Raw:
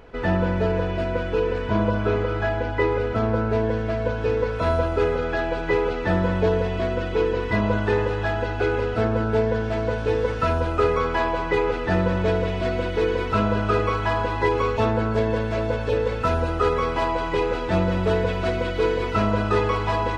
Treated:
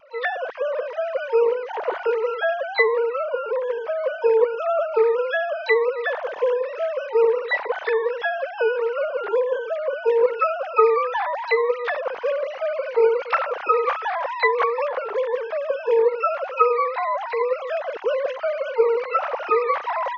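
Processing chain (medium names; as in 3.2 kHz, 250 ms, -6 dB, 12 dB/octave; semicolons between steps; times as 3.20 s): formants replaced by sine waves; harmony voices +12 st -16 dB; wow and flutter 19 cents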